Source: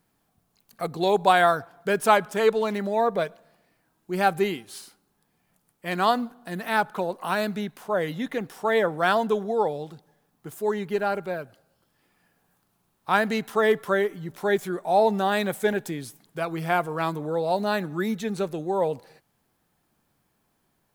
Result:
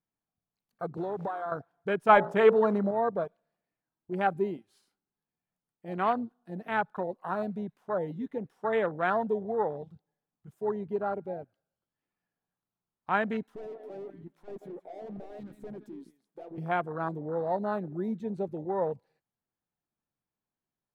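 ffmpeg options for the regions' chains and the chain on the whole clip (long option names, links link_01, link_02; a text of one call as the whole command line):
ffmpeg -i in.wav -filter_complex "[0:a]asettb=1/sr,asplit=3[link_01][link_02][link_03];[link_01]atrim=end=0.974[link_04];[link_02]atrim=start=0.97:end=1.52,asetpts=PTS-STARTPTS,afade=type=in:duration=0.004:curve=qsin,afade=type=out:start_time=0.546:duration=0.004:curve=qsin,aeval=exprs='val(0)+0.5*0.0299*sgn(val(0))':channel_layout=same,highpass=110,acompressor=threshold=-23dB:ratio=16:attack=3.2:release=140:knee=1:detection=peak[link_05];[link_03]atrim=start=1.516[link_06];[link_04][link_05]acrossfade=duration=0.004:curve1=hsin:curve2=qsin[link_07];[link_07][link_06]acrossfade=duration=0.004:curve1=qsin:curve2=hsin,asettb=1/sr,asplit=3[link_08][link_09][link_10];[link_08]atrim=end=2.094[link_11];[link_09]atrim=start=2.09:end=2.91,asetpts=PTS-STARTPTS,afade=type=in:duration=0.004:curve=qsin,afade=type=out:start_time=0.816:duration=0.004:curve=qsin,bandreject=frequency=56.94:width_type=h:width=4,bandreject=frequency=113.88:width_type=h:width=4,bandreject=frequency=170.82:width_type=h:width=4,bandreject=frequency=227.76:width_type=h:width=4,bandreject=frequency=284.7:width_type=h:width=4,bandreject=frequency=341.64:width_type=h:width=4,bandreject=frequency=398.58:width_type=h:width=4,bandreject=frequency=455.52:width_type=h:width=4,bandreject=frequency=512.46:width_type=h:width=4,bandreject=frequency=569.4:width_type=h:width=4,bandreject=frequency=626.34:width_type=h:width=4,bandreject=frequency=683.28:width_type=h:width=4,bandreject=frequency=740.22:width_type=h:width=4,bandreject=frequency=797.16:width_type=h:width=4,bandreject=frequency=854.1:width_type=h:width=4,acontrast=72[link_12];[link_10]atrim=start=2.906[link_13];[link_11][link_12]acrossfade=duration=0.004:curve1=hsin:curve2=qsin[link_14];[link_14][link_13]acrossfade=duration=0.004:curve1=qsin:curve2=hsin,asettb=1/sr,asplit=3[link_15][link_16][link_17];[link_15]atrim=end=13.424[link_18];[link_16]atrim=start=13.42:end=16.58,asetpts=PTS-STARTPTS,afade=type=in:duration=0.004:curve=qsin,afade=type=out:start_time=3.156:duration=0.004:curve=qsin,lowshelf=frequency=150:width_type=q:width=1.5:gain=-12.5,aecho=1:1:167:0.15,atrim=end_sample=139356,aeval=exprs='(tanh(44.7*val(0)+0.3)-tanh(0.3))/44.7':channel_layout=same[link_19];[link_17]atrim=start=16.576[link_20];[link_18][link_19]acrossfade=duration=0.004:curve1=hsin:curve2=qsin[link_21];[link_21][link_20]acrossfade=duration=0.004:curve1=qsin:curve2=hsin,aemphasis=mode=reproduction:type=cd,afwtdn=0.0447,volume=-5.5dB" out.wav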